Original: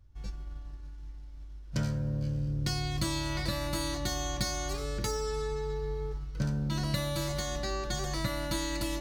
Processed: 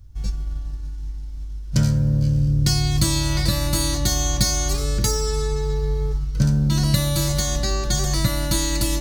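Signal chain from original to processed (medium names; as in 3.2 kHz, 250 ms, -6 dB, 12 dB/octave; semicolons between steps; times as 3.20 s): tone controls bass +8 dB, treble +10 dB; trim +6 dB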